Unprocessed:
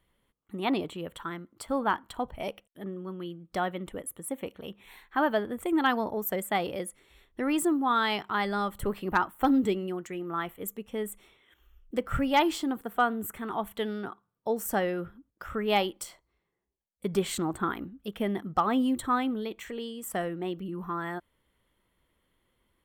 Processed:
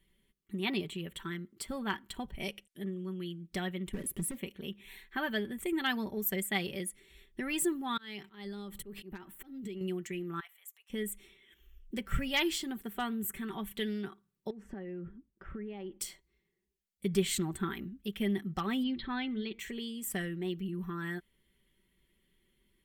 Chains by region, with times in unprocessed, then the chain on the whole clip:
2.41–3.41 s: low-pass 12 kHz + treble shelf 3.9 kHz +5.5 dB
3.93–4.38 s: compression 5:1, threshold -38 dBFS + tilt shelf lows +5.5 dB, about 660 Hz + waveshaping leveller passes 3
7.97–9.81 s: compression 16:1, threshold -37 dBFS + slow attack 133 ms
10.40–10.90 s: steep high-pass 730 Hz 48 dB/octave + level held to a coarse grid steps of 16 dB
14.50–16.00 s: low-pass 1.4 kHz + compression 10:1, threshold -37 dBFS
18.83–19.59 s: brick-wall FIR low-pass 5.2 kHz + de-hum 229 Hz, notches 10
whole clip: high-order bell 860 Hz -12 dB; comb 5.2 ms, depth 55%; dynamic bell 320 Hz, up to -6 dB, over -40 dBFS, Q 0.85

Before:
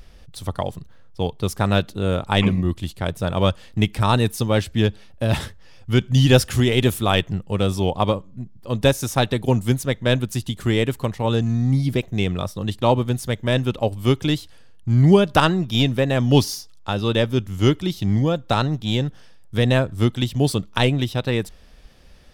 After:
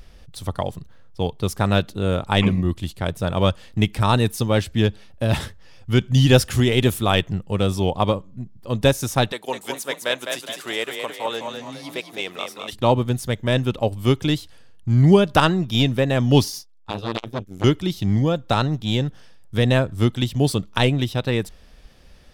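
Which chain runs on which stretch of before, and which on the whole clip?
9.32–12.73 s: high-pass 610 Hz + frequency-shifting echo 207 ms, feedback 46%, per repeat +32 Hz, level -5.5 dB
16.47–17.64 s: Butterworth band-stop 1.4 kHz, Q 7.5 + transformer saturation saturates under 1.4 kHz
whole clip: none

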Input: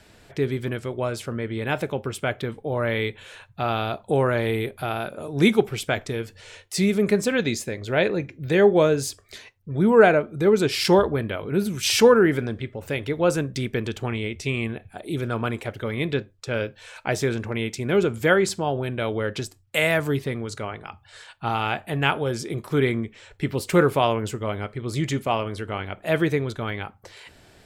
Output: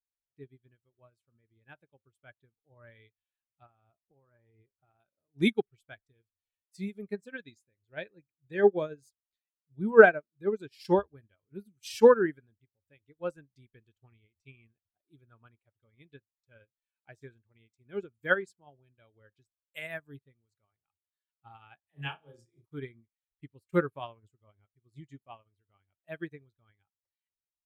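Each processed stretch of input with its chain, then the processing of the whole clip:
3.66–4.99 s: low-pass 2.1 kHz + compression 10:1, threshold -22 dBFS
21.80–22.66 s: dynamic bell 1.5 kHz, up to -5 dB, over -36 dBFS, Q 2.6 + phase dispersion lows, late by 41 ms, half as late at 560 Hz + flutter echo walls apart 5.9 m, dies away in 0.49 s
whole clip: expander on every frequency bin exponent 1.5; dynamic bell 1.6 kHz, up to +7 dB, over -50 dBFS, Q 7.1; upward expansion 2.5:1, over -39 dBFS; trim +2 dB

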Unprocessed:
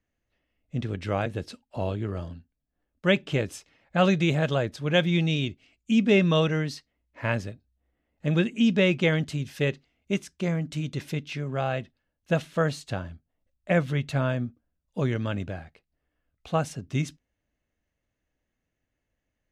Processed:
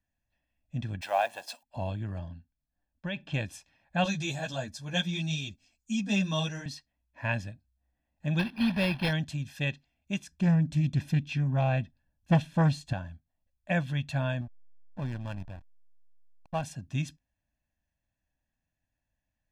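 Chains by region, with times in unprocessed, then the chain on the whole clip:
1.01–1.63 s: companding laws mixed up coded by mu + resonant high-pass 710 Hz, resonance Q 2.8 + treble shelf 7.4 kHz +11.5 dB
2.19–3.34 s: distance through air 99 m + compression 12:1, threshold -24 dBFS
4.04–6.66 s: resonant high shelf 4 kHz +9 dB, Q 1.5 + three-phase chorus
8.39–9.13 s: block-companded coder 3-bit + decimation joined by straight lines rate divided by 6×
10.31–12.93 s: bass shelf 420 Hz +9.5 dB + loudspeaker Doppler distortion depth 0.29 ms
14.41–16.63 s: rippled Chebyshev low-pass 3.8 kHz, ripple 3 dB + peaking EQ 67 Hz +9 dB 0.23 oct + hysteresis with a dead band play -30.5 dBFS
whole clip: dynamic bell 3.2 kHz, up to +5 dB, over -42 dBFS, Q 1.5; comb 1.2 ms, depth 76%; trim -7 dB

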